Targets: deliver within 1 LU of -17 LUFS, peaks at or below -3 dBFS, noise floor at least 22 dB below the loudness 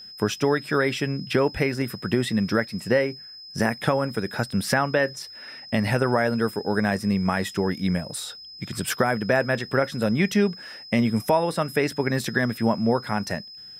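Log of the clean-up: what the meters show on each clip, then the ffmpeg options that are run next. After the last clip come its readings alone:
steady tone 5100 Hz; tone level -40 dBFS; loudness -24.5 LUFS; peak -8.0 dBFS; loudness target -17.0 LUFS
-> -af "bandreject=f=5.1k:w=30"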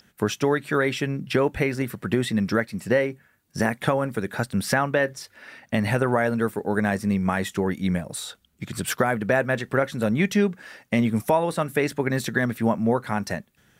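steady tone none; loudness -24.5 LUFS; peak -8.0 dBFS; loudness target -17.0 LUFS
-> -af "volume=7.5dB,alimiter=limit=-3dB:level=0:latency=1"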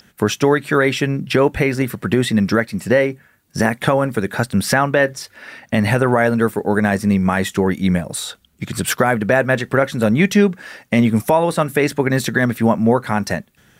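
loudness -17.5 LUFS; peak -3.0 dBFS; noise floor -56 dBFS

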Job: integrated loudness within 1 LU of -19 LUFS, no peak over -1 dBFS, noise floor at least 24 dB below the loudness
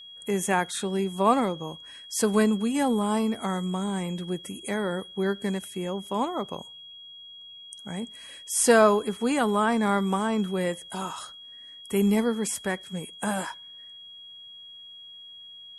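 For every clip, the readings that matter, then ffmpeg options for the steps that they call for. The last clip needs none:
steady tone 3300 Hz; tone level -43 dBFS; loudness -26.5 LUFS; peak -6.5 dBFS; loudness target -19.0 LUFS
-> -af "bandreject=f=3.3k:w=30"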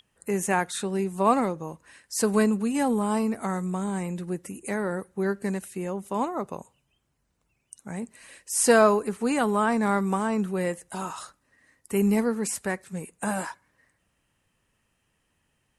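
steady tone none; loudness -26.5 LUFS; peak -6.5 dBFS; loudness target -19.0 LUFS
-> -af "volume=7.5dB,alimiter=limit=-1dB:level=0:latency=1"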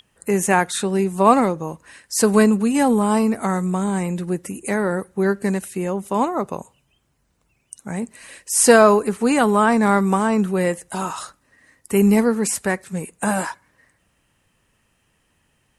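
loudness -19.0 LUFS; peak -1.0 dBFS; noise floor -66 dBFS

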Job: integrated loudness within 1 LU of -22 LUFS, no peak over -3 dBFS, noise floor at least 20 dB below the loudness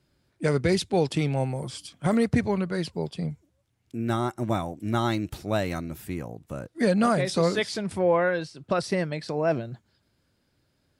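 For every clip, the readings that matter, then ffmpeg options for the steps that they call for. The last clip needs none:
loudness -27.0 LUFS; peak -11.5 dBFS; loudness target -22.0 LUFS
-> -af "volume=5dB"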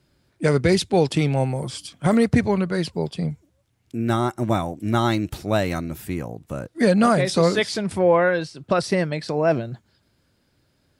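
loudness -22.0 LUFS; peak -6.5 dBFS; noise floor -66 dBFS

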